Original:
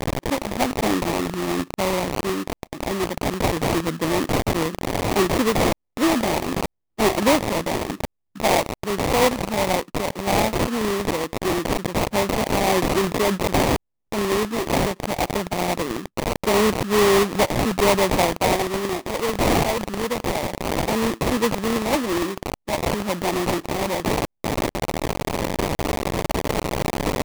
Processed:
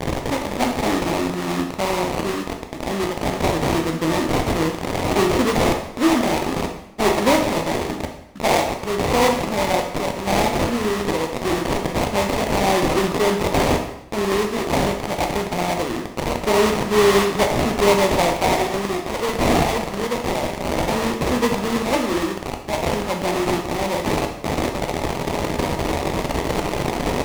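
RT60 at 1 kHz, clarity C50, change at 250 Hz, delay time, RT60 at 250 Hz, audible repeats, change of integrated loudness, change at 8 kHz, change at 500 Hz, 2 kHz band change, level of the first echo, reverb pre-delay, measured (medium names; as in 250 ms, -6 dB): 0.80 s, 6.5 dB, +1.5 dB, no echo, 0.90 s, no echo, +1.5 dB, 0.0 dB, +2.0 dB, +1.5 dB, no echo, 6 ms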